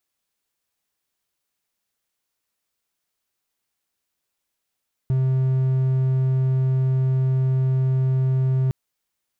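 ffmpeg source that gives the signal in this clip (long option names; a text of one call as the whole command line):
ffmpeg -f lavfi -i "aevalsrc='0.178*(1-4*abs(mod(131*t+0.25,1)-0.5))':duration=3.61:sample_rate=44100" out.wav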